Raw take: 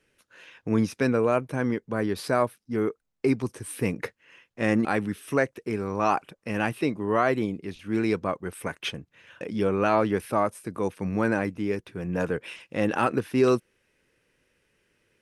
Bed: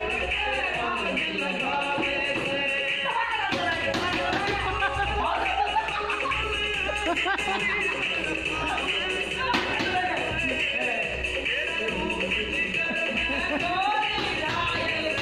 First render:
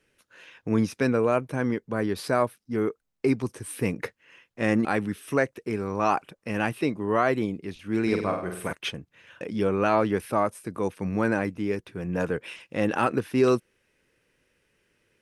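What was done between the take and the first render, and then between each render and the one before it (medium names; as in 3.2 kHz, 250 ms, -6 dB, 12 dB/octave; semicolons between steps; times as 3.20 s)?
8.02–8.73 s: flutter echo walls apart 8.5 m, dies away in 0.6 s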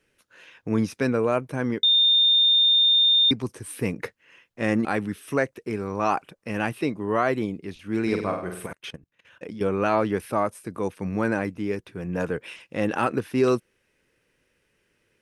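1.83–3.31 s: bleep 3.63 kHz -15 dBFS; 8.66–9.61 s: level held to a coarse grid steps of 18 dB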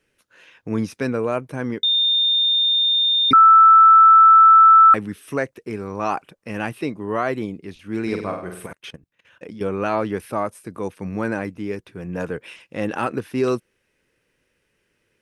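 3.33–4.94 s: bleep 1.32 kHz -6.5 dBFS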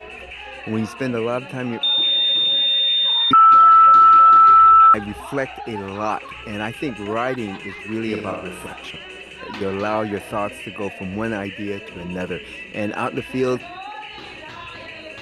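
add bed -9 dB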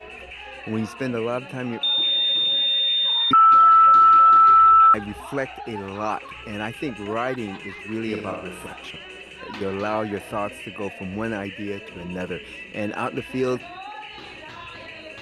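trim -3 dB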